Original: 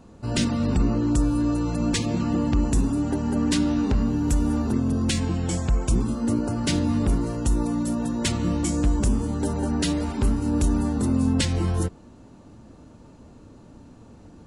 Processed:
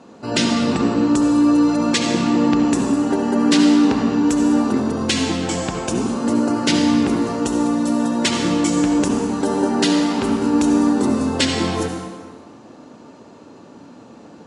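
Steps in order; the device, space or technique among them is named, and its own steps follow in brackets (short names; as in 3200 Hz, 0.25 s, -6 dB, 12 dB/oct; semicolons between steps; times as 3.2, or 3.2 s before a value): supermarket ceiling speaker (BPF 270–6700 Hz; reverb RT60 1.5 s, pre-delay 61 ms, DRR 3 dB); gain +8.5 dB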